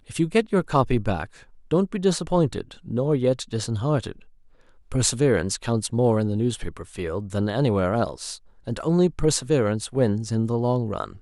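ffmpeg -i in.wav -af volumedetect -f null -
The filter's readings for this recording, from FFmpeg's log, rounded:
mean_volume: -23.6 dB
max_volume: -3.3 dB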